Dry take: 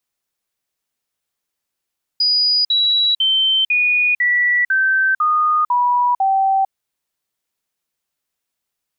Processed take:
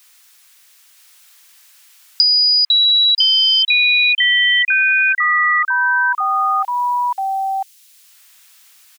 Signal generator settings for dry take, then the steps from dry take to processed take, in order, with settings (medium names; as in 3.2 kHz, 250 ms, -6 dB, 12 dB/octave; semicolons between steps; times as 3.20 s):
stepped sine 4.92 kHz down, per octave 3, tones 9, 0.45 s, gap 0.05 s -12.5 dBFS
high-pass 1.4 kHz 12 dB/octave; delay 978 ms -4 dB; three bands compressed up and down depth 100%